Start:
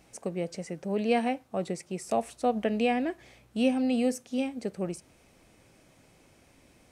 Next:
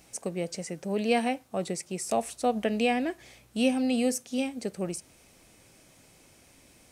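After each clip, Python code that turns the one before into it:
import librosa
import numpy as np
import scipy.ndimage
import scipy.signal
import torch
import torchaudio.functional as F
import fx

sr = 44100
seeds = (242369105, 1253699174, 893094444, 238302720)

y = fx.high_shelf(x, sr, hz=3700.0, db=9.5)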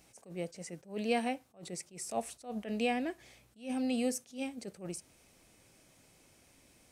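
y = fx.attack_slew(x, sr, db_per_s=190.0)
y = F.gain(torch.from_numpy(y), -6.0).numpy()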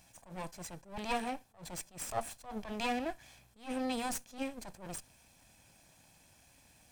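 y = fx.lower_of_two(x, sr, delay_ms=1.2)
y = F.gain(torch.from_numpy(y), 2.0).numpy()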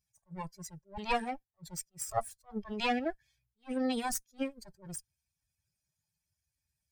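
y = fx.bin_expand(x, sr, power=2.0)
y = F.gain(torch.from_numpy(y), 6.5).numpy()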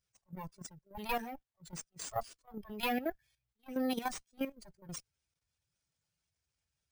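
y = fx.level_steps(x, sr, step_db=11)
y = np.repeat(y[::3], 3)[:len(y)]
y = F.gain(torch.from_numpy(y), 1.0).numpy()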